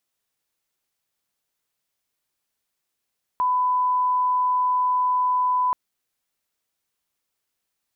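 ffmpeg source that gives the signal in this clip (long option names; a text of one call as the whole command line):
ffmpeg -f lavfi -i "sine=frequency=1000:duration=2.33:sample_rate=44100,volume=0.06dB" out.wav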